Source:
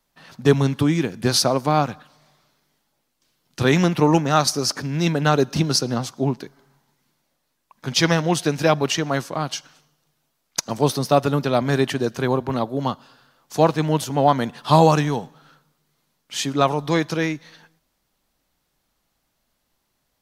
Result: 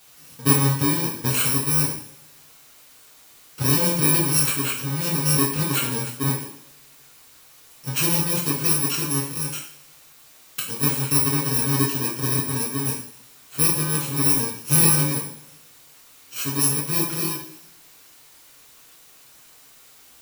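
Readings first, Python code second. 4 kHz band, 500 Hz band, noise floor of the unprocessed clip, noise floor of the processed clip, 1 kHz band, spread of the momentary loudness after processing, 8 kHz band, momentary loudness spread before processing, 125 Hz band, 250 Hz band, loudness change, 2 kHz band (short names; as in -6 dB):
-2.5 dB, -11.0 dB, -73 dBFS, -50 dBFS, -10.0 dB, 12 LU, +7.5 dB, 10 LU, -2.0 dB, -4.5 dB, +0.5 dB, -3.0 dB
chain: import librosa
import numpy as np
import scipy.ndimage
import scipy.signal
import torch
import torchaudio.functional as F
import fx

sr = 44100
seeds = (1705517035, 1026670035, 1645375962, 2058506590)

y = fx.bit_reversed(x, sr, seeds[0], block=64)
y = fx.quant_dither(y, sr, seeds[1], bits=8, dither='triangular')
y = fx.rev_double_slope(y, sr, seeds[2], early_s=0.53, late_s=1.5, knee_db=-23, drr_db=-4.0)
y = y * librosa.db_to_amplitude(-7.5)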